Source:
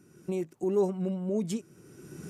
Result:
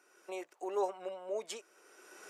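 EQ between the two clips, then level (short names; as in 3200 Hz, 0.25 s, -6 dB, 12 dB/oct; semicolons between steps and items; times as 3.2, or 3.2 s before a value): HPF 580 Hz 24 dB/oct; LPF 3500 Hz 6 dB/oct; +4.0 dB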